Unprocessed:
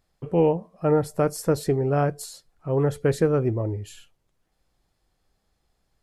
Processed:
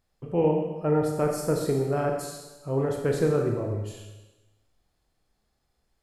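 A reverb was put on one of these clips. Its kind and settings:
four-comb reverb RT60 1.1 s, combs from 26 ms, DRR 1 dB
level −4.5 dB

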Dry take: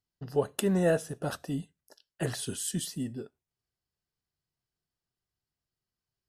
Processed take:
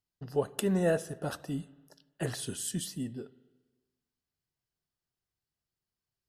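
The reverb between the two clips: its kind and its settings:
spring reverb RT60 1.3 s, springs 47/52/57 ms, chirp 40 ms, DRR 18.5 dB
level −2 dB

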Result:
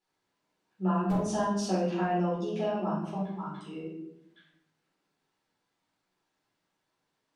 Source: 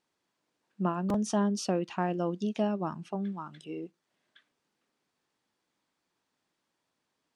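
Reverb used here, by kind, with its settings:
rectangular room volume 200 cubic metres, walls mixed, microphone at 4.2 metres
level −11.5 dB

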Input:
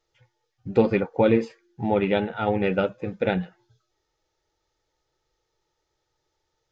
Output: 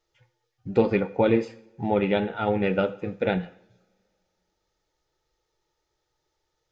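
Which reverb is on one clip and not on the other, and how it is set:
coupled-rooms reverb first 0.61 s, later 2.4 s, from −25 dB, DRR 13 dB
level −1 dB

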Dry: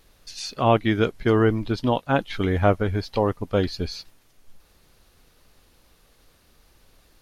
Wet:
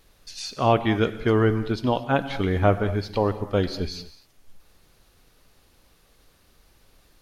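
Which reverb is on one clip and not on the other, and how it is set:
reverb whose tail is shaped and stops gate 260 ms flat, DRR 11.5 dB
level −1 dB

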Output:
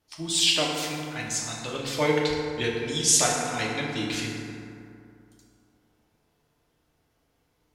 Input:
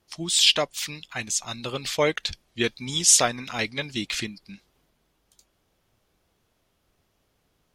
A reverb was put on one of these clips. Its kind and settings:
feedback delay network reverb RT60 2.6 s, high-frequency decay 0.4×, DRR −3.5 dB
level −5.5 dB

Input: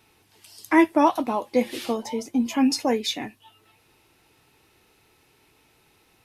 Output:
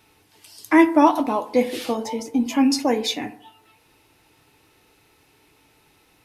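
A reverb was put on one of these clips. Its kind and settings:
feedback delay network reverb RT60 0.69 s, low-frequency decay 0.8×, high-frequency decay 0.35×, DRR 9.5 dB
level +2 dB

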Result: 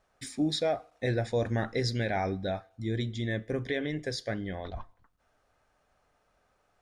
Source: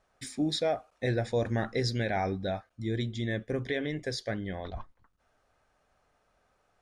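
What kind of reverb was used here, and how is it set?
feedback delay network reverb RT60 0.59 s, low-frequency decay 0.8×, high-frequency decay 0.9×, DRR 19.5 dB

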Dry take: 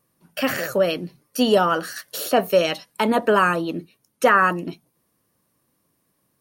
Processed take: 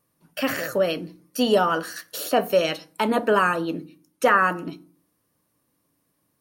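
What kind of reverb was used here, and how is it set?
feedback delay network reverb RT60 0.42 s, low-frequency decay 1.4×, high-frequency decay 0.6×, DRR 12 dB
level −2.5 dB

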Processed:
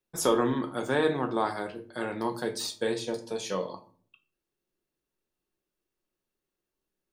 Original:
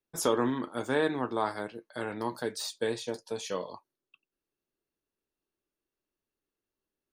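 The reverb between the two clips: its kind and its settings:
rectangular room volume 360 cubic metres, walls furnished, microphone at 0.96 metres
level +1.5 dB

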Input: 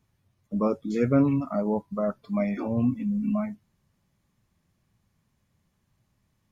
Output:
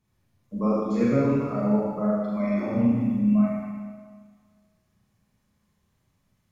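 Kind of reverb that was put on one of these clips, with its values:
four-comb reverb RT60 1.7 s, combs from 30 ms, DRR −6 dB
level −5 dB

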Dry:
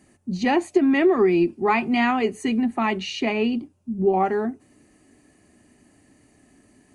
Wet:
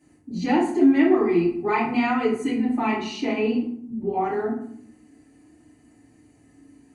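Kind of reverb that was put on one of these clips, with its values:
feedback delay network reverb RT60 0.63 s, low-frequency decay 1.55×, high-frequency decay 0.6×, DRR −9 dB
level −11.5 dB

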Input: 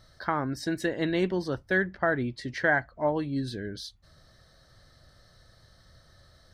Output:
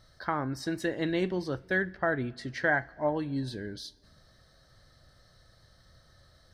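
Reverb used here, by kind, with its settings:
coupled-rooms reverb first 0.26 s, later 1.9 s, from −18 dB, DRR 15 dB
level −2.5 dB

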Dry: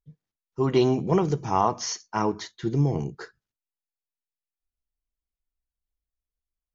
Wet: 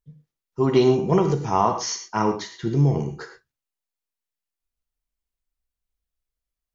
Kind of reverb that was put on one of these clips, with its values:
reverb whose tail is shaped and stops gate 140 ms flat, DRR 5.5 dB
level +2 dB

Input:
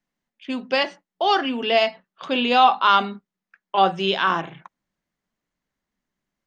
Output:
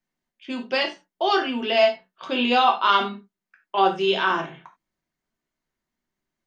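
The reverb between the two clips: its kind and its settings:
reverb whose tail is shaped and stops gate 110 ms falling, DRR 1.5 dB
level −3.5 dB

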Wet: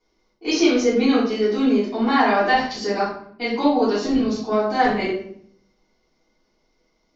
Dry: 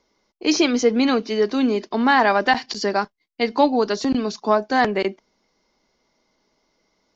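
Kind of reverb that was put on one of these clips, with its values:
rectangular room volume 100 cubic metres, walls mixed, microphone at 3.4 metres
level −13.5 dB

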